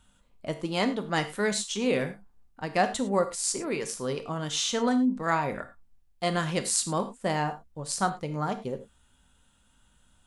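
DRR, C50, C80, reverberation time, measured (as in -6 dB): 7.0 dB, 12.0 dB, 16.0 dB, no single decay rate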